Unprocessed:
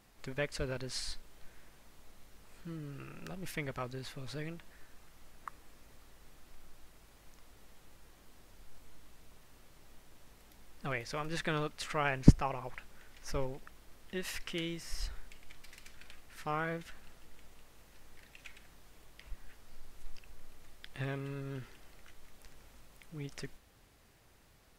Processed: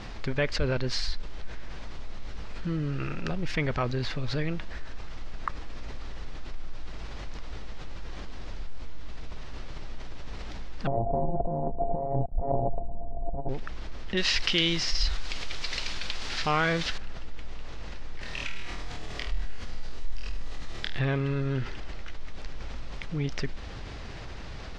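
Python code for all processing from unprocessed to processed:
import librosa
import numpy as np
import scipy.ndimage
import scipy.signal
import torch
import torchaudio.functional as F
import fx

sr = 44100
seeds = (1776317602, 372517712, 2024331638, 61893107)

y = fx.chain(x, sr, fx.sample_sort(block=64),
    fx.steep_lowpass(hz=940.0, slope=72),
    fx.over_compress(threshold_db=-40.0, ratio=-0.5), at=(10.87, 13.49))
y = fx.chain(y, sr, fx.peak_eq(hz=4400.0, db=13.5, octaves=1.6),
    fx.quant_dither(seeds[0], bits=8, dither='triangular'), at=(14.17, 16.98))
y = fx.chain(y, sr, fx.high_shelf(hz=8400.0, db=11.5),
    fx.room_flutter(wall_m=4.3, rt60_s=0.69), at=(18.21, 20.99))
y = scipy.signal.sosfilt(scipy.signal.butter(4, 5400.0, 'lowpass', fs=sr, output='sos'), y)
y = fx.low_shelf(y, sr, hz=77.0, db=8.0)
y = fx.env_flatten(y, sr, amount_pct=50)
y = F.gain(torch.from_numpy(y), 2.0).numpy()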